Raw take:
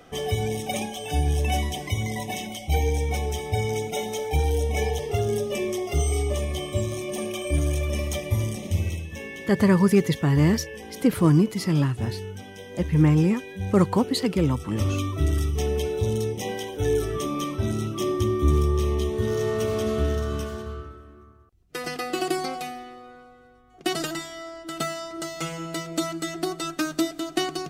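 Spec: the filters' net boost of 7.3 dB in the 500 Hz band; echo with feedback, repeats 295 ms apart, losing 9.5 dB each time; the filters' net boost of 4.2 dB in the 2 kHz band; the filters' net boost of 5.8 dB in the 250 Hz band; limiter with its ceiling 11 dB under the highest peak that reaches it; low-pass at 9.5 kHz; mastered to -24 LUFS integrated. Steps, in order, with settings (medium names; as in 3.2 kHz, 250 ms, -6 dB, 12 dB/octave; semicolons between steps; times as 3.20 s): low-pass 9.5 kHz; peaking EQ 250 Hz +6 dB; peaking EQ 500 Hz +7 dB; peaking EQ 2 kHz +4.5 dB; peak limiter -12.5 dBFS; feedback delay 295 ms, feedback 33%, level -9.5 dB; trim -1 dB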